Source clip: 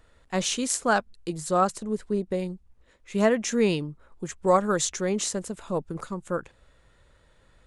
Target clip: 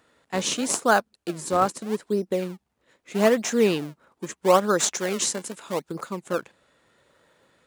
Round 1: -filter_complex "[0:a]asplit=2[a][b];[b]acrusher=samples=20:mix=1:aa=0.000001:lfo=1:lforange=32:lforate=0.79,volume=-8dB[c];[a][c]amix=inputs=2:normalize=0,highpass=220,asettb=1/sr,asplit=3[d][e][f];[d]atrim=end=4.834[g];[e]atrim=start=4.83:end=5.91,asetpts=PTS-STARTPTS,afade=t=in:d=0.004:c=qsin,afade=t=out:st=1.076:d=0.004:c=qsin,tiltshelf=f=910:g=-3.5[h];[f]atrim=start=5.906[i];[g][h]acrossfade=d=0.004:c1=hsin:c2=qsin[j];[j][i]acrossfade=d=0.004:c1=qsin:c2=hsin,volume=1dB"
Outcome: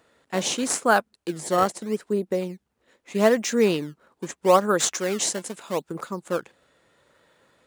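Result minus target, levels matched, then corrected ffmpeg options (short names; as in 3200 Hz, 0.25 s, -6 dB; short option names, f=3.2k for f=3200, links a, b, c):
decimation with a swept rate: distortion -4 dB
-filter_complex "[0:a]asplit=2[a][b];[b]acrusher=samples=39:mix=1:aa=0.000001:lfo=1:lforange=62.4:lforate=0.79,volume=-8dB[c];[a][c]amix=inputs=2:normalize=0,highpass=220,asettb=1/sr,asplit=3[d][e][f];[d]atrim=end=4.834[g];[e]atrim=start=4.83:end=5.91,asetpts=PTS-STARTPTS,afade=t=in:d=0.004:c=qsin,afade=t=out:st=1.076:d=0.004:c=qsin,tiltshelf=f=910:g=-3.5[h];[f]atrim=start=5.906[i];[g][h]acrossfade=d=0.004:c1=hsin:c2=qsin[j];[j][i]acrossfade=d=0.004:c1=qsin:c2=hsin,volume=1dB"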